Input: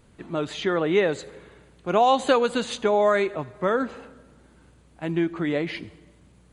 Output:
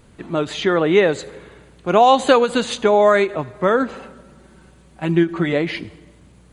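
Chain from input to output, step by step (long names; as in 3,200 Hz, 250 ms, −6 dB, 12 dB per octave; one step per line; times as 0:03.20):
0:03.93–0:05.53: comb filter 5.3 ms, depth 54%
every ending faded ahead of time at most 290 dB per second
level +6.5 dB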